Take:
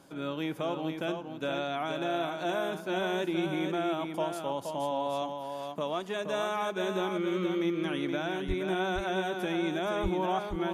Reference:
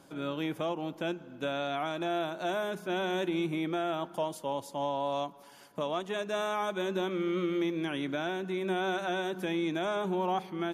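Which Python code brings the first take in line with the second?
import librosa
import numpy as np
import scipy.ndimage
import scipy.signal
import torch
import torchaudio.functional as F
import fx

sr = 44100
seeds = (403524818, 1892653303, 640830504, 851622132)

y = fx.highpass(x, sr, hz=140.0, slope=24, at=(8.47, 8.59), fade=0.02)
y = fx.highpass(y, sr, hz=140.0, slope=24, at=(10.02, 10.14), fade=0.02)
y = fx.fix_echo_inverse(y, sr, delay_ms=472, level_db=-6.0)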